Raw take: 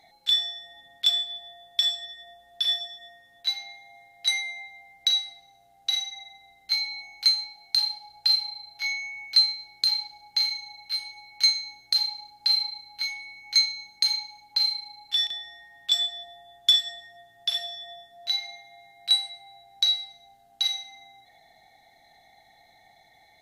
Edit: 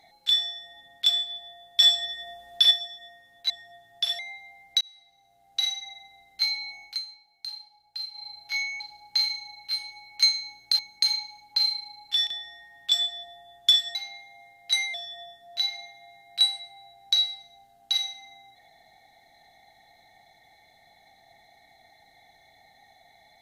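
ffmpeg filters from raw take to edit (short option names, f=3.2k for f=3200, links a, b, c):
-filter_complex "[0:a]asplit=12[a][b][c][d][e][f][g][h][i][j][k][l];[a]atrim=end=1.802[m];[b]atrim=start=1.798:end=2.712,asetpts=PTS-STARTPTS,volume=7dB[n];[c]atrim=start=2.708:end=3.502[o];[d]atrim=start=16.948:end=17.642[p];[e]atrim=start=4.488:end=5.11,asetpts=PTS-STARTPTS,afade=t=out:st=0.618:d=0.004:c=hsin[q];[f]atrim=start=5.11:end=7.28,asetpts=PTS-STARTPTS,afade=t=in:d=0.82,afade=t=out:st=2.03:d=0.14:silence=0.211349[r];[g]atrim=start=7.28:end=8.43,asetpts=PTS-STARTPTS,volume=-13.5dB[s];[h]atrim=start=8.43:end=9.102,asetpts=PTS-STARTPTS,afade=t=in:d=0.14:silence=0.211349[t];[i]atrim=start=10.008:end=12.002[u];[j]atrim=start=13.788:end=16.952[v];[k]atrim=start=3.498:end=4.492[w];[l]atrim=start=17.638[x];[m][n]acrossfade=d=0.004:c1=hsin:c2=hsin[y];[y][o]acrossfade=d=0.004:c1=hsin:c2=hsin[z];[z][p]acrossfade=d=0.004:c1=hsin:c2=hsin[aa];[q][r][s][t]concat=n=4:v=0:a=1[ab];[aa][ab]acrossfade=d=0.004:c1=hsin:c2=hsin[ac];[ac][u]acrossfade=d=0.004:c1=hsin:c2=hsin[ad];[ad][v]acrossfade=d=0.004:c1=hsin:c2=hsin[ae];[ae][w]acrossfade=d=0.004:c1=hsin:c2=hsin[af];[af][x]acrossfade=d=0.004:c1=hsin:c2=hsin"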